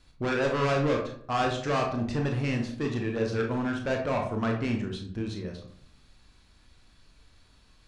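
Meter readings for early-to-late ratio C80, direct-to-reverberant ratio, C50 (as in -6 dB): 10.0 dB, 1.5 dB, 6.0 dB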